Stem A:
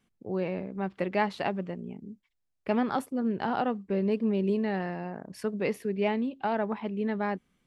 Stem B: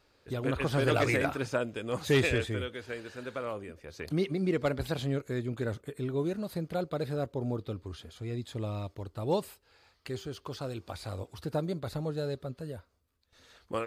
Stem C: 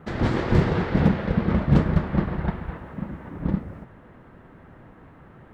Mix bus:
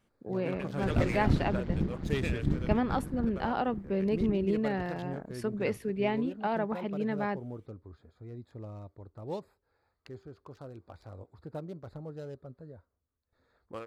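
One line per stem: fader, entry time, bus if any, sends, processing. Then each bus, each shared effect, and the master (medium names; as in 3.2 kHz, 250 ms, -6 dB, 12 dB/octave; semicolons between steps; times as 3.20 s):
-2.0 dB, 0.00 s, no send, none
-8.0 dB, 0.00 s, no send, local Wiener filter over 15 samples
-6.5 dB, 0.75 s, no send, tone controls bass +14 dB, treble +12 dB; AM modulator 150 Hz, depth 90%; auto duck -12 dB, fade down 1.80 s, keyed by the first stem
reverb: none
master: none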